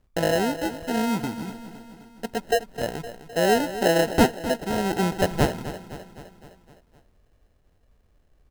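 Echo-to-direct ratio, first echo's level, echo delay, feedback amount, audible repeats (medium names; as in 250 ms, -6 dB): -11.5 dB, -13.0 dB, 257 ms, 57%, 5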